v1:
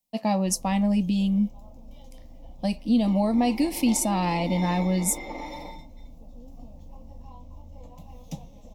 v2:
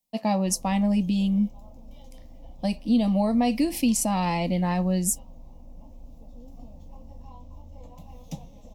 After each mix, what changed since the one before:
second sound: muted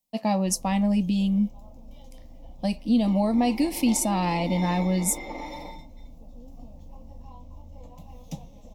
second sound: unmuted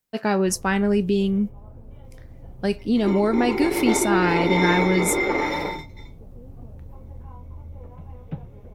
first sound: add Gaussian low-pass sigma 3.6 samples; second sound +9.5 dB; master: remove static phaser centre 400 Hz, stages 6

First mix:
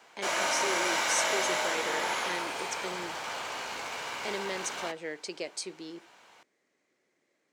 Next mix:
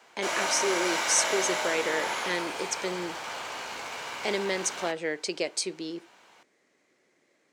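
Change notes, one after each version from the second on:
speech +7.0 dB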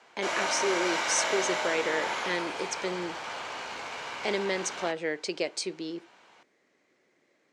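master: add distance through air 59 m

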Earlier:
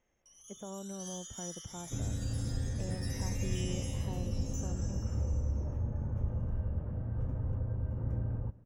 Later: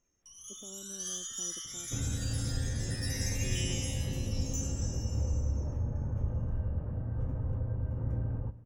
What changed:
speech: add band-pass filter 300 Hz, Q 2.4; first sound +7.5 dB; second sound: send +8.5 dB

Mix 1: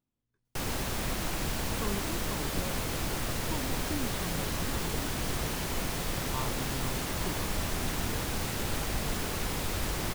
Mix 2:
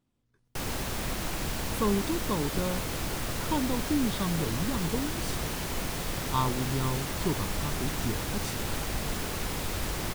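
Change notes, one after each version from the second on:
speech +10.0 dB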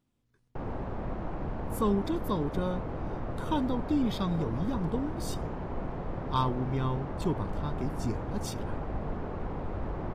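background: add Chebyshev low-pass 850 Hz, order 2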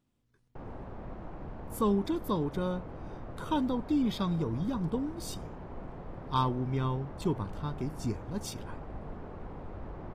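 background -7.5 dB

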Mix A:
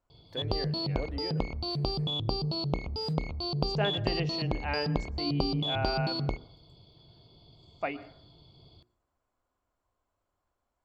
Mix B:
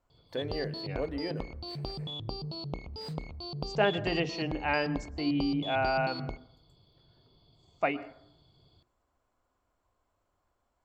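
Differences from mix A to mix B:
speech +4.5 dB; background -7.0 dB

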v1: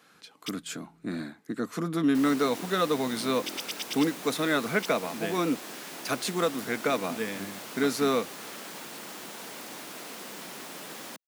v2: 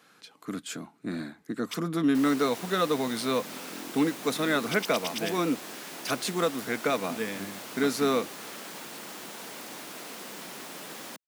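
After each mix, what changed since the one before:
first sound: entry +1.25 s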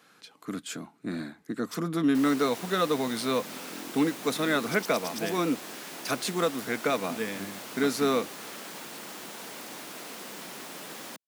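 first sound: add Butterworth band-stop 2.2 kHz, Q 0.67

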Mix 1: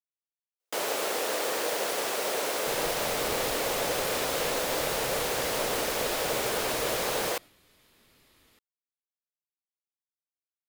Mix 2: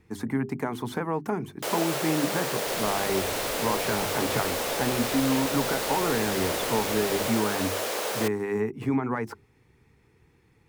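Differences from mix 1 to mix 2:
speech: unmuted; first sound: entry +0.90 s

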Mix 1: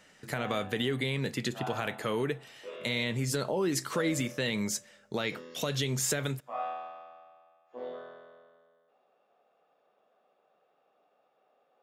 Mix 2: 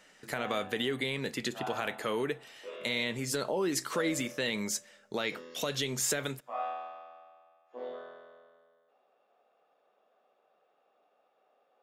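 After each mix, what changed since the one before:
master: add peaking EQ 110 Hz -9.5 dB 1.5 oct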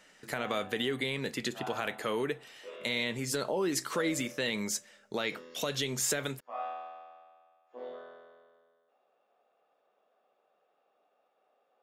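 background: send off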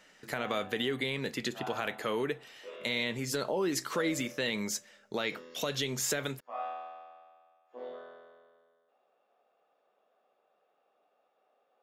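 speech: add peaking EQ 8.9 kHz -5.5 dB 0.42 oct

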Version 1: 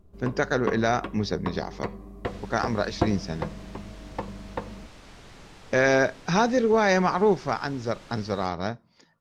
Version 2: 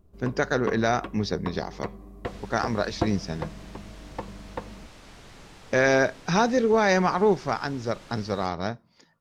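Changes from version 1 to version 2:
first sound: send -6.5 dB; master: add treble shelf 11 kHz +5.5 dB

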